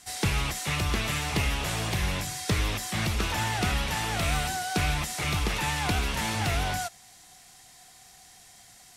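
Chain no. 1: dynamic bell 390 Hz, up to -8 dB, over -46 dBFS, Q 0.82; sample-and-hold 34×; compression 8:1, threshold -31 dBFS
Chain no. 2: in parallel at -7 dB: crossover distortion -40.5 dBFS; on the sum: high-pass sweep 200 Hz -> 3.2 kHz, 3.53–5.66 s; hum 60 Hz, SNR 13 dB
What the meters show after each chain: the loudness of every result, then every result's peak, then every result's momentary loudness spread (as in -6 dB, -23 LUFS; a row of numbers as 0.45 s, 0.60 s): -36.0 LUFS, -25.0 LUFS; -21.0 dBFS, -8.0 dBFS; 18 LU, 18 LU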